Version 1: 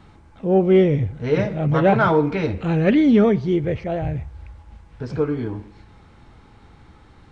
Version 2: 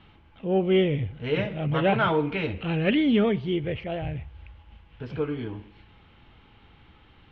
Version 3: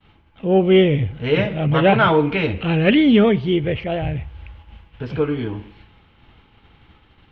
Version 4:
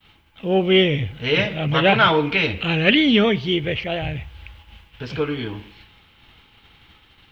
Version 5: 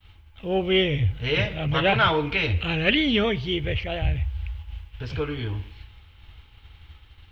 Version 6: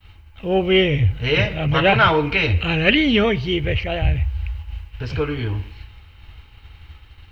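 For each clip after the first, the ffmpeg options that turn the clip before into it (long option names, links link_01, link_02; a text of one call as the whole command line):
ffmpeg -i in.wav -af "lowpass=frequency=3000:width_type=q:width=4.6,volume=-7dB" out.wav
ffmpeg -i in.wav -af "agate=range=-33dB:threshold=-48dB:ratio=3:detection=peak,volume=8dB" out.wav
ffmpeg -i in.wav -af "crystalizer=i=7:c=0,volume=-4dB" out.wav
ffmpeg -i in.wav -af "lowshelf=frequency=120:width_type=q:width=1.5:gain=13,volume=-4.5dB" out.wav
ffmpeg -i in.wav -af "bandreject=frequency=3400:width=7.3,volume=5.5dB" out.wav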